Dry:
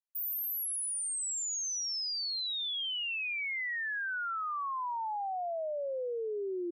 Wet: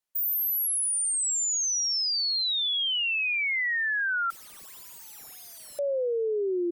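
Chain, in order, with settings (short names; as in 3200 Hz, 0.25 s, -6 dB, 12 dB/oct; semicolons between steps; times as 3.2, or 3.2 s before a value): 4.3–5.79 wrapped overs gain 48 dB; wow and flutter 24 cents; gain +8 dB; Opus 256 kbps 48000 Hz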